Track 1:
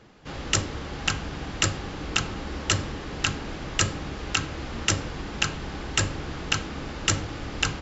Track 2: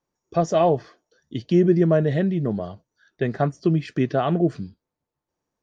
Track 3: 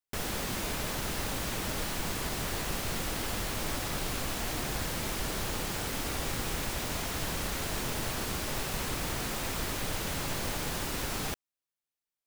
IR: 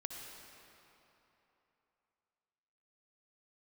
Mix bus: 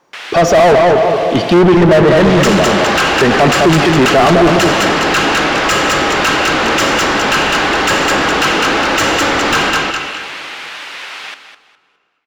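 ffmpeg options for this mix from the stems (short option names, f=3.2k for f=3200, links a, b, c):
-filter_complex "[0:a]equalizer=f=100:w=1.2:g=-11.5,adelay=1900,volume=2.5dB,asplit=3[a][b][c];[b]volume=-7dB[d];[c]volume=-3.5dB[e];[1:a]volume=2.5dB,asplit=3[f][g][h];[g]volume=-6.5dB[i];[h]volume=-5.5dB[j];[2:a]bandpass=f=2.7k:t=q:w=1.2:csg=0,volume=-8.5dB,asplit=3[k][l][m];[l]volume=-20dB[n];[m]volume=-10dB[o];[3:a]atrim=start_sample=2205[p];[d][i][n]amix=inputs=3:normalize=0[q];[q][p]afir=irnorm=-1:irlink=0[r];[e][j][o]amix=inputs=3:normalize=0,aecho=0:1:206|412|618|824:1|0.24|0.0576|0.0138[s];[a][f][k][r][s]amix=inputs=5:normalize=0,asplit=2[t][u];[u]highpass=f=720:p=1,volume=33dB,asoftclip=type=tanh:threshold=-1dB[v];[t][v]amix=inputs=2:normalize=0,lowpass=f=2k:p=1,volume=-6dB"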